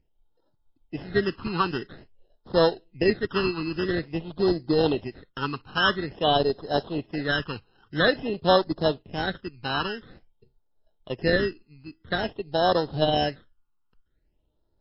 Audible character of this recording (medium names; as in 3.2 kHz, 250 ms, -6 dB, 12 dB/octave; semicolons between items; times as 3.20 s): aliases and images of a low sample rate 2.3 kHz, jitter 0%; phasing stages 12, 0.49 Hz, lowest notch 590–2400 Hz; MP3